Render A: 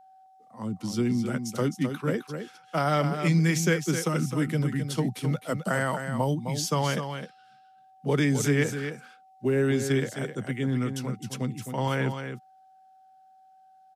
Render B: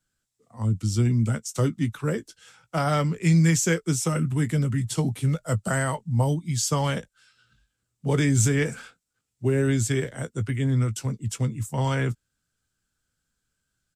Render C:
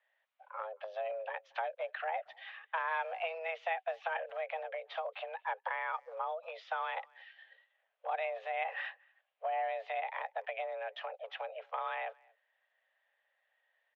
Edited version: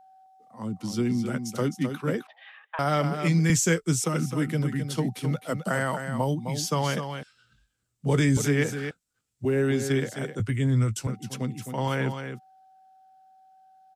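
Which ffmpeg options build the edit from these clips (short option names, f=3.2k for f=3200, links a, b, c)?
-filter_complex "[1:a]asplit=4[a][b][c][d];[0:a]asplit=6[e][f][g][h][i][j];[e]atrim=end=2.272[k];[2:a]atrim=start=2.268:end=2.792[l];[f]atrim=start=2.788:end=3.502[m];[a]atrim=start=3.498:end=4.042[n];[g]atrim=start=4.038:end=7.232[o];[b]atrim=start=7.228:end=8.372[p];[h]atrim=start=8.368:end=8.912[q];[c]atrim=start=8.908:end=9.452[r];[i]atrim=start=9.448:end=10.402[s];[d]atrim=start=10.398:end=11.072[t];[j]atrim=start=11.068[u];[k][l]acrossfade=d=0.004:c1=hsin:c2=hsin[v];[v][m]acrossfade=d=0.004:c1=hsin:c2=hsin[w];[w][n]acrossfade=d=0.004:c1=hsin:c2=hsin[x];[x][o]acrossfade=d=0.004:c1=hsin:c2=hsin[y];[y][p]acrossfade=d=0.004:c1=hsin:c2=hsin[z];[z][q]acrossfade=d=0.004:c1=hsin:c2=hsin[aa];[aa][r]acrossfade=d=0.004:c1=hsin:c2=hsin[ab];[ab][s]acrossfade=d=0.004:c1=hsin:c2=hsin[ac];[ac][t]acrossfade=d=0.004:c1=hsin:c2=hsin[ad];[ad][u]acrossfade=d=0.004:c1=hsin:c2=hsin"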